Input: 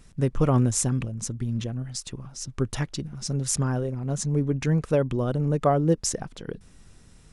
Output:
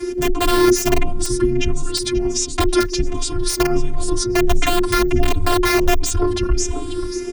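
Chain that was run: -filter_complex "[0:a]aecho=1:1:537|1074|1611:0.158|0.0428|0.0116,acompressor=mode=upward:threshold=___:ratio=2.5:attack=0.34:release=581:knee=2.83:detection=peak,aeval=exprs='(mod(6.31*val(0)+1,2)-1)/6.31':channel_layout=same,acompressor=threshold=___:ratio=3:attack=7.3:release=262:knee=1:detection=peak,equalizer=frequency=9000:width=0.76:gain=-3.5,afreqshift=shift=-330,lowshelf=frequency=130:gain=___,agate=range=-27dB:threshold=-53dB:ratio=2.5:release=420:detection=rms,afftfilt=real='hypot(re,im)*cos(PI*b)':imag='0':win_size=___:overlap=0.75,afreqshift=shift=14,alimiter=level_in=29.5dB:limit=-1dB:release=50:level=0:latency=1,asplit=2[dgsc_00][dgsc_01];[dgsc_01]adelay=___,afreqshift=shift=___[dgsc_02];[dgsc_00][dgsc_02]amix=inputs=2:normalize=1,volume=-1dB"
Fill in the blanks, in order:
-41dB, -35dB, 4.5, 512, 5.9, 1.4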